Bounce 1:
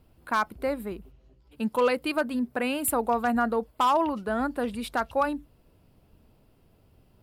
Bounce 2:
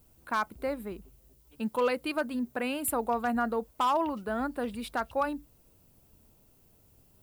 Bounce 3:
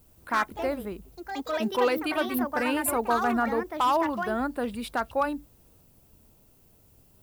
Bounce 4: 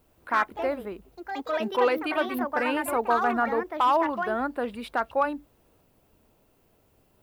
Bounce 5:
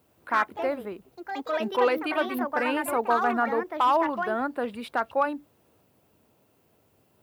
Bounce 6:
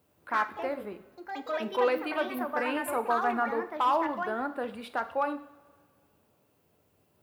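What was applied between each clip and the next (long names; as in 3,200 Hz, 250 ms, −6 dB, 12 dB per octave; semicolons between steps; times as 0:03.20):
background noise violet −62 dBFS; level −4 dB
delay with pitch and tempo change per echo 84 ms, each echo +4 semitones, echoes 2, each echo −6 dB; level +3 dB
bass and treble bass −9 dB, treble −11 dB; level +2 dB
high-pass filter 83 Hz 24 dB per octave
coupled-rooms reverb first 0.56 s, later 2.1 s, from −18 dB, DRR 8 dB; level −4.5 dB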